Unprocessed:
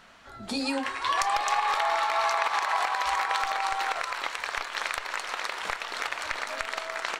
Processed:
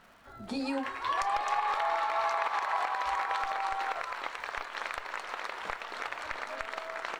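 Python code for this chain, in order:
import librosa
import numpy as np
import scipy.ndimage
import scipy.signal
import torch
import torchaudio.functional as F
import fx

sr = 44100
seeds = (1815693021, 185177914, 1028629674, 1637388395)

y = fx.high_shelf(x, sr, hz=2900.0, db=-11.5)
y = fx.dmg_crackle(y, sr, seeds[0], per_s=360.0, level_db=-51.0)
y = y * librosa.db_to_amplitude(-2.5)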